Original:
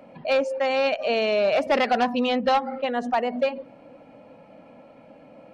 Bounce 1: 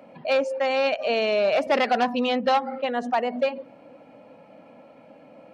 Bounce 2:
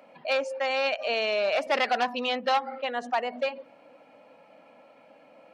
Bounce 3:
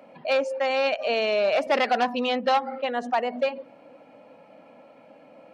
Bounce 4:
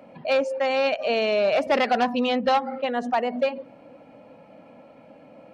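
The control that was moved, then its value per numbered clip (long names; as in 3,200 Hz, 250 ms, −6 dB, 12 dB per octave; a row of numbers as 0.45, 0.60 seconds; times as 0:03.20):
high-pass filter, corner frequency: 140, 900, 350, 44 Hertz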